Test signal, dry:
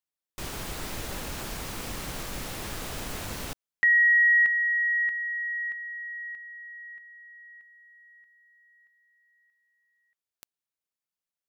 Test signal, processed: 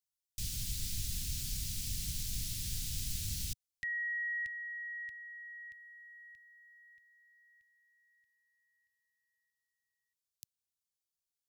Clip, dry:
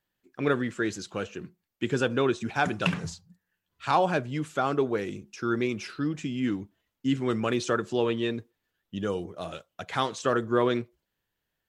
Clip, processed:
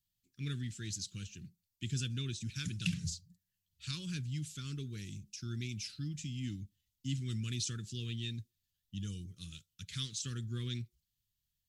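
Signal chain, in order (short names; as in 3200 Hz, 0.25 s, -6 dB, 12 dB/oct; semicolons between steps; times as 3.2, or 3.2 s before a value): Chebyshev band-stop 110–4700 Hz, order 2; gain +1 dB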